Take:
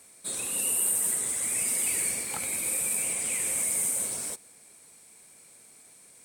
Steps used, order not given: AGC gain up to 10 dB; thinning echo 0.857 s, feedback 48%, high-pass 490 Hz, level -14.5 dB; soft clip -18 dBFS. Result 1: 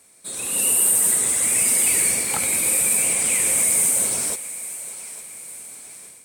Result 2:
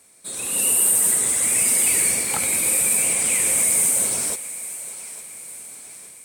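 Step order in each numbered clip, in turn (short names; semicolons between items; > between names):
soft clip > thinning echo > AGC; soft clip > AGC > thinning echo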